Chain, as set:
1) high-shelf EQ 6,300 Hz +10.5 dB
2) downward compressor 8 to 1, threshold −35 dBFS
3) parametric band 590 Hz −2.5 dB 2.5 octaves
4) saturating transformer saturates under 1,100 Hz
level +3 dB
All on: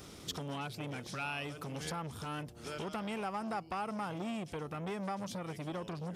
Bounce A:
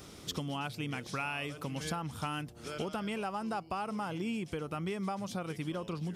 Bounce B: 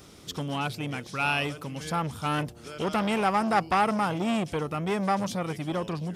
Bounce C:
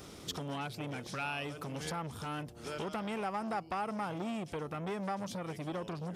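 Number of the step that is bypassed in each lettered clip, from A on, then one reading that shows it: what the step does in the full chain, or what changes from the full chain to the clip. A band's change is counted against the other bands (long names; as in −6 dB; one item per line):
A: 4, change in momentary loudness spread −1 LU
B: 2, change in momentary loudness spread +5 LU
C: 3, change in integrated loudness +1.5 LU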